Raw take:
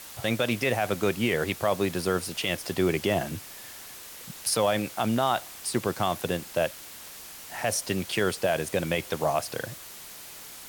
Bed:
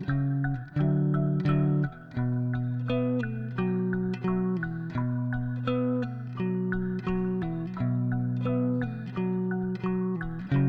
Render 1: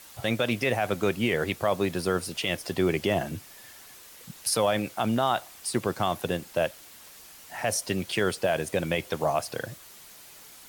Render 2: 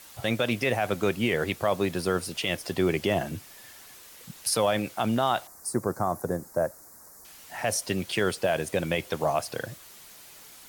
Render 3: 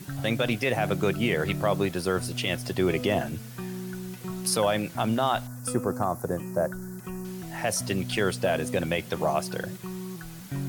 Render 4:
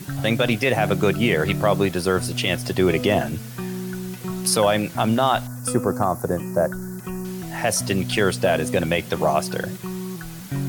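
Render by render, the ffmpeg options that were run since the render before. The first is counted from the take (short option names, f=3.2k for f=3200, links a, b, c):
-af "afftdn=nr=6:nf=-44"
-filter_complex "[0:a]asettb=1/sr,asplit=3[a][b][c];[a]atrim=end=5.474[d];[b]atrim=start=5.47:end=7.25,asetpts=PTS-STARTPTS,afade=t=in:d=0.004:c=qsin,afade=t=out:st=1.776:d=0.004:c=qsin,asuperstop=centerf=3000:order=4:qfactor=0.64[e];[c]atrim=start=7.246[f];[d][e]acrossfade=d=0.004:c1=hsin:c2=qsin[g];[g][f]acrossfade=d=0.004:c1=qsin:c2=hsin"
-filter_complex "[1:a]volume=-8dB[a];[0:a][a]amix=inputs=2:normalize=0"
-af "volume=6dB"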